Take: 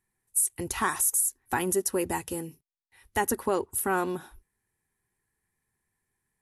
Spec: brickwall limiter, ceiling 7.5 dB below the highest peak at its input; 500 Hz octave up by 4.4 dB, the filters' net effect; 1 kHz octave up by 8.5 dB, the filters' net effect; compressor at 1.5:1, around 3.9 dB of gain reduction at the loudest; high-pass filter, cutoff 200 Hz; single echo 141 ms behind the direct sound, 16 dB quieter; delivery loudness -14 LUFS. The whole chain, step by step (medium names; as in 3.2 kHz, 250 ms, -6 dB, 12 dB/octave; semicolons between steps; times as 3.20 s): high-pass 200 Hz; peaking EQ 500 Hz +4.5 dB; peaking EQ 1 kHz +9 dB; compression 1.5:1, threshold -26 dBFS; peak limiter -16.5 dBFS; delay 141 ms -16 dB; trim +14.5 dB